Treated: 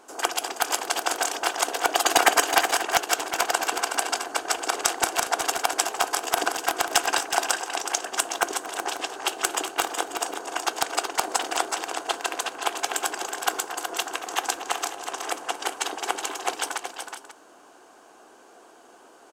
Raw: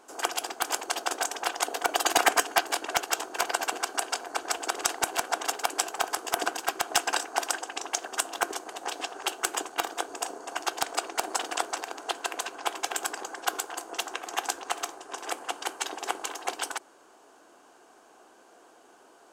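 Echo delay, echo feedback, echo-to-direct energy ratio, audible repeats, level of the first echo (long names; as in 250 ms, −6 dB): 229 ms, repeats not evenly spaced, −6.5 dB, 3, −16.0 dB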